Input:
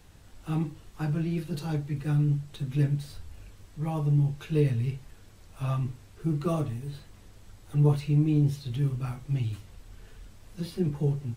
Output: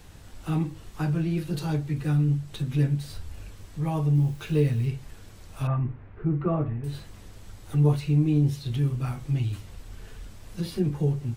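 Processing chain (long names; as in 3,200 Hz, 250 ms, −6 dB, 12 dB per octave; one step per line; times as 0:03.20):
0:05.67–0:06.84: low-pass filter 2,100 Hz 24 dB per octave
in parallel at 0 dB: downward compressor, threshold −35 dBFS, peak gain reduction 16.5 dB
0:04.14–0:04.85: on the sum: background noise white −60 dBFS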